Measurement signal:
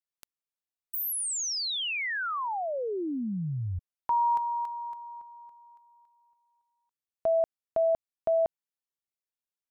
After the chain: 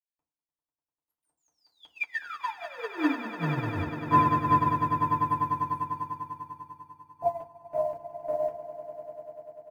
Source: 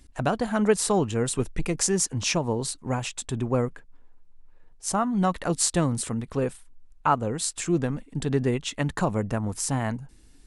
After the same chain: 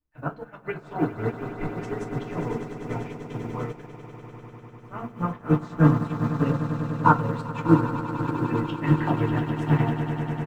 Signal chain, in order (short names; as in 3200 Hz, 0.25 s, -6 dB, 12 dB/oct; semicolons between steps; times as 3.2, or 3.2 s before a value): bell 710 Hz -4.5 dB 2.1 oct; wow and flutter 0.42 Hz 140 cents; flange 0.41 Hz, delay 1.8 ms, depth 1.2 ms, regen -81%; in parallel at -5.5 dB: soft clip -24 dBFS; on the sum: LFO low-pass saw up 5.4 Hz 830–3000 Hz; bit-crush 10-bit; doubler 13 ms -14 dB; on a send: swelling echo 99 ms, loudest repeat 8, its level -10 dB; on the sum: FDN reverb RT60 0.34 s, low-frequency decay 1.35×, high-frequency decay 0.55×, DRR -3.5 dB; upward expander 2.5:1, over -34 dBFS